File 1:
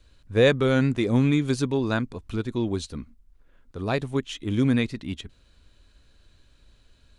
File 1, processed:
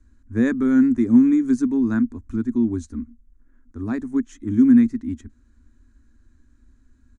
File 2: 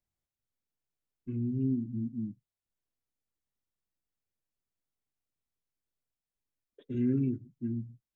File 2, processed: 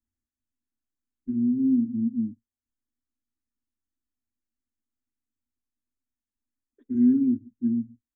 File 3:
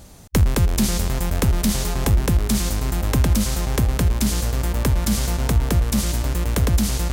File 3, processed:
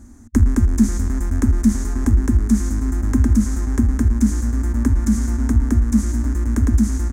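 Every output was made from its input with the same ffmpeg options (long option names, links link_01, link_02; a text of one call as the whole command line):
ffmpeg -i in.wav -af "firequalizer=gain_entry='entry(100,0);entry(150,-28);entry(230,10);entry(490,-17);entry(970,-9);entry(1700,-5);entry(2800,-24);entry(4300,-21);entry(6500,-5);entry(13000,-19)':delay=0.05:min_phase=1,volume=2.5dB" out.wav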